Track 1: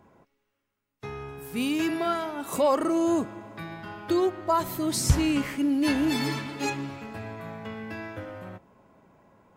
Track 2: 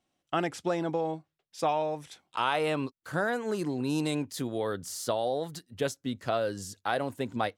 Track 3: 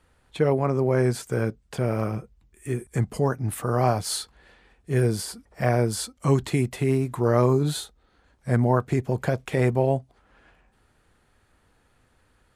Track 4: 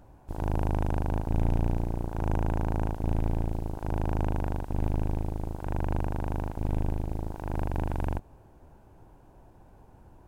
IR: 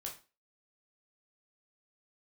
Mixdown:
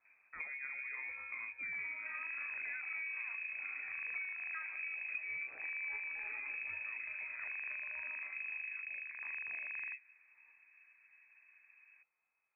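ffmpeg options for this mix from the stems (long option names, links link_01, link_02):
-filter_complex "[0:a]aphaser=in_gain=1:out_gain=1:delay=1.1:decay=0.47:speed=1.7:type=sinusoidal,equalizer=frequency=180:width=0.85:gain=6.5,adelay=50,volume=-17.5dB[link_01];[1:a]alimiter=limit=-19dB:level=0:latency=1:release=156,volume=-19dB[link_02];[2:a]flanger=delay=18:depth=3.8:speed=0.53,acompressor=threshold=-29dB:ratio=6,volume=-9.5dB,afade=type=out:start_time=3.4:duration=0.59:silence=0.298538[link_03];[3:a]adelay=1750,volume=-12dB[link_04];[link_01][link_02][link_03][link_04]amix=inputs=4:normalize=0,lowpass=frequency=2200:width_type=q:width=0.5098,lowpass=frequency=2200:width_type=q:width=0.6013,lowpass=frequency=2200:width_type=q:width=0.9,lowpass=frequency=2200:width_type=q:width=2.563,afreqshift=-2600,acompressor=threshold=-40dB:ratio=5"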